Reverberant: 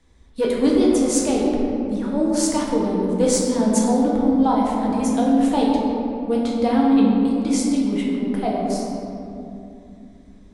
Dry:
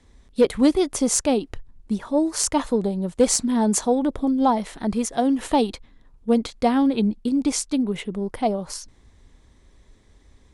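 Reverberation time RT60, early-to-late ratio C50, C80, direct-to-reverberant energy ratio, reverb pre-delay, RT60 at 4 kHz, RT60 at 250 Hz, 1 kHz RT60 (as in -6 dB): 2.7 s, -0.5 dB, 1.0 dB, -4.0 dB, 6 ms, 1.4 s, 4.0 s, 2.5 s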